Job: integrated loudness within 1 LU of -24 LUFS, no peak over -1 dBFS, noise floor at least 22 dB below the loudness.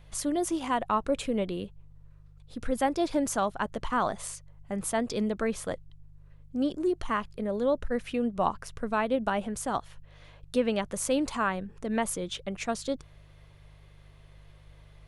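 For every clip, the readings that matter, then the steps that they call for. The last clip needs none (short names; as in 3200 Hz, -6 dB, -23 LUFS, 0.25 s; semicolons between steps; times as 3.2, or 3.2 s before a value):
hum 50 Hz; harmonics up to 150 Hz; hum level -51 dBFS; loudness -30.5 LUFS; peak -11.5 dBFS; loudness target -24.0 LUFS
-> de-hum 50 Hz, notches 3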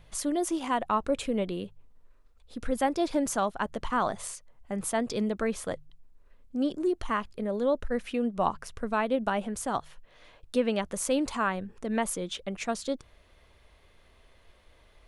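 hum none; loudness -30.5 LUFS; peak -11.5 dBFS; loudness target -24.0 LUFS
-> gain +6.5 dB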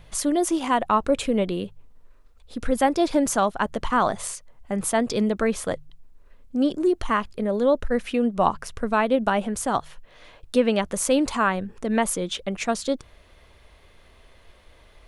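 loudness -24.0 LUFS; peak -5.0 dBFS; noise floor -54 dBFS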